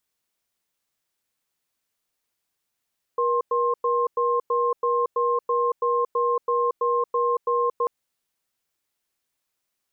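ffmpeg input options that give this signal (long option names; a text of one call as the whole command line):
ffmpeg -f lavfi -i "aevalsrc='0.0794*(sin(2*PI*478*t)+sin(2*PI*1060*t))*clip(min(mod(t,0.33),0.23-mod(t,0.33))/0.005,0,1)':duration=4.69:sample_rate=44100" out.wav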